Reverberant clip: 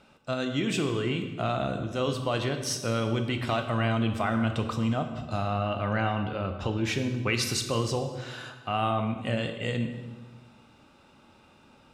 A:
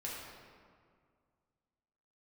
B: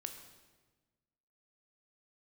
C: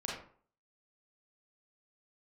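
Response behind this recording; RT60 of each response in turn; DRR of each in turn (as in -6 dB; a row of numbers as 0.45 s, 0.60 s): B; 2.0 s, 1.3 s, 0.50 s; -6.0 dB, 5.5 dB, -4.5 dB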